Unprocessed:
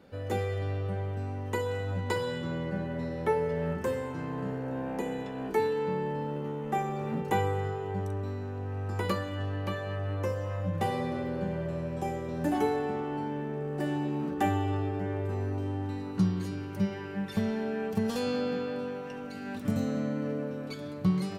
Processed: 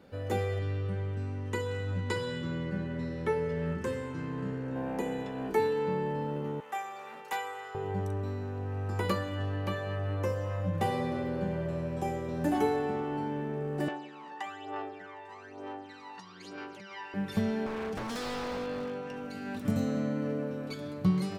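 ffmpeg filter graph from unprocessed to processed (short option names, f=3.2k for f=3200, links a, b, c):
-filter_complex "[0:a]asettb=1/sr,asplit=3[a][b][c];[a]atrim=end=0.594[d];[b]atrim=start=0.59:end=4.76,asetpts=PTS-STARTPTS,afade=t=in:d=0.004:c=qsin,afade=t=out:st=4.166:d=0.004:c=qsin,lowpass=9.6k,equalizer=f=720:w=1.9:g=-10[e];[c]atrim=start=4.756[f];[d][e]acrossfade=d=0.004:c1=hsin:c2=qsin[g];[g][f]acrossfade=d=0.004:c1=qsin:c2=hsin,asettb=1/sr,asplit=3[h][i][j];[h]atrim=end=6.604[k];[i]atrim=start=6.6:end=7.75,asetpts=PTS-STARTPTS,afade=t=in:d=0.004:c=qsin,afade=t=out:st=1.146:d=0.004:c=qsin,highpass=970,aeval=exprs='0.0531*(abs(mod(val(0)/0.0531+3,4)-2)-1)':c=same[l];[j]atrim=start=7.746[m];[k][l]acrossfade=d=0.004:c1=hsin:c2=qsin[n];[n][m]acrossfade=d=0.004:c1=qsin:c2=hsin,asettb=1/sr,asplit=3[o][p][q];[o]atrim=end=13.884[r];[p]atrim=start=13.88:end=17.14,asetpts=PTS-STARTPTS,afade=t=in:d=0.004:c=qsin,afade=t=out:st=3.256:d=0.004:c=qsin,acompressor=threshold=-33dB:ratio=2.5:attack=3.2:release=140:knee=1:detection=peak,aphaser=in_gain=1:out_gain=1:delay=1.1:decay=0.67:speed=1.1:type=sinusoidal,highpass=680,lowpass=6k[s];[q]atrim=start=17.136[t];[r][s]acrossfade=d=0.004:c1=hsin:c2=qsin[u];[u][t]acrossfade=d=0.004:c1=qsin:c2=hsin,asettb=1/sr,asplit=3[v][w][x];[v]atrim=end=17.664[y];[w]atrim=start=17.66:end=19.16,asetpts=PTS-STARTPTS,afade=t=in:d=0.004:c=qsin,afade=t=out:st=1.496:d=0.004:c=qsin,lowpass=9k,aeval=exprs='0.0299*(abs(mod(val(0)/0.0299+3,4)-2)-1)':c=same[z];[x]atrim=start=19.156[aa];[y][z]acrossfade=d=0.004:c1=hsin:c2=qsin[ab];[ab][aa]acrossfade=d=0.004:c1=qsin:c2=hsin"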